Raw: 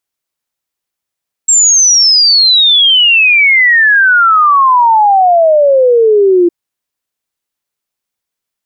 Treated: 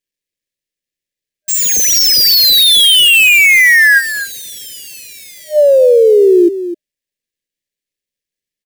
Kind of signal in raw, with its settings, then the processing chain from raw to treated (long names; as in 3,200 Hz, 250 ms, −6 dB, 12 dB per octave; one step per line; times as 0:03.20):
exponential sine sweep 7,600 Hz → 340 Hz 5.01 s −4 dBFS
gap after every zero crossing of 0.054 ms
brick-wall band-stop 610–1,600 Hz
on a send: single-tap delay 255 ms −12 dB